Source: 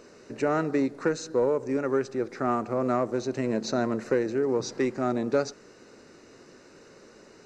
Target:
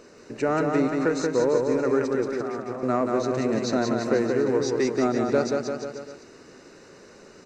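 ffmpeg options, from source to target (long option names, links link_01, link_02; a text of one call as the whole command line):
ffmpeg -i in.wav -filter_complex "[0:a]asettb=1/sr,asplit=3[link_01][link_02][link_03];[link_01]atrim=end=2.364[link_04];[link_02]atrim=start=2.36:end=2.83,asetpts=PTS-STARTPTS,afade=type=in:duration=0.004:curve=qsin,afade=type=out:start_time=0.466:duration=0.004:curve=qsin,acompressor=threshold=-34dB:ratio=6[link_05];[link_03]atrim=start=2.826[link_06];[link_04][link_05]acrossfade=duration=0.004:curve1=hsin:curve2=qsin[link_07];[link_07][link_06]acrossfade=duration=0.004:curve1=qsin:curve2=hsin,aecho=1:1:180|342|487.8|619|737.1:0.631|0.398|0.251|0.158|0.1,volume=1.5dB" out.wav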